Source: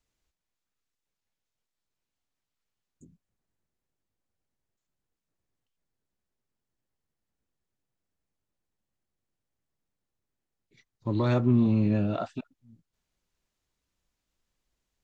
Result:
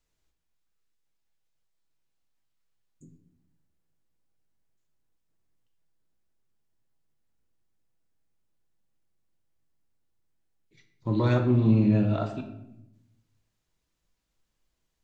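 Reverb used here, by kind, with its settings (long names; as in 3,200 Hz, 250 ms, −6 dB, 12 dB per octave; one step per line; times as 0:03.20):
rectangular room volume 240 cubic metres, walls mixed, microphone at 0.64 metres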